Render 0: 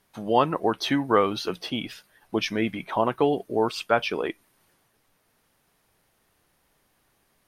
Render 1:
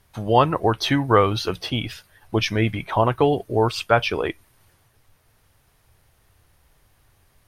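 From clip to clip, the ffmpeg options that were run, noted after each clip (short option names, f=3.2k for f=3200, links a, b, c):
-af "lowshelf=f=140:t=q:w=1.5:g=11,volume=4.5dB"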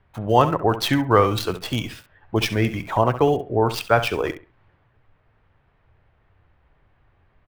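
-filter_complex "[0:a]aecho=1:1:67|134|201:0.251|0.0553|0.0122,acrossover=split=370|2800[a][b][c];[c]acrusher=bits=5:dc=4:mix=0:aa=0.000001[d];[a][b][d]amix=inputs=3:normalize=0"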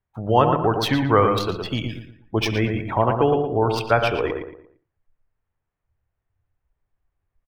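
-filter_complex "[0:a]afftdn=nr=21:nf=-38,asplit=2[a][b];[b]adelay=115,lowpass=f=2.2k:p=1,volume=-5dB,asplit=2[c][d];[d]adelay=115,lowpass=f=2.2k:p=1,volume=0.35,asplit=2[e][f];[f]adelay=115,lowpass=f=2.2k:p=1,volume=0.35,asplit=2[g][h];[h]adelay=115,lowpass=f=2.2k:p=1,volume=0.35[i];[a][c][e][g][i]amix=inputs=5:normalize=0,volume=-1dB"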